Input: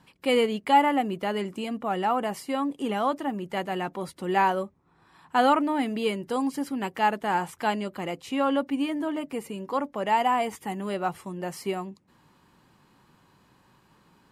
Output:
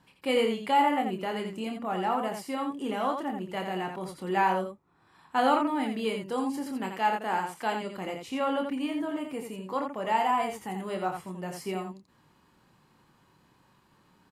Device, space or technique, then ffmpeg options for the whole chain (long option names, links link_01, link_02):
slapback doubling: -filter_complex "[0:a]asplit=3[link_01][link_02][link_03];[link_01]afade=type=out:start_time=6.92:duration=0.02[link_04];[link_02]highpass=210,afade=type=in:start_time=6.92:duration=0.02,afade=type=out:start_time=7.81:duration=0.02[link_05];[link_03]afade=type=in:start_time=7.81:duration=0.02[link_06];[link_04][link_05][link_06]amix=inputs=3:normalize=0,asplit=3[link_07][link_08][link_09];[link_08]adelay=27,volume=-6dB[link_10];[link_09]adelay=85,volume=-6dB[link_11];[link_07][link_10][link_11]amix=inputs=3:normalize=0,volume=-4.5dB"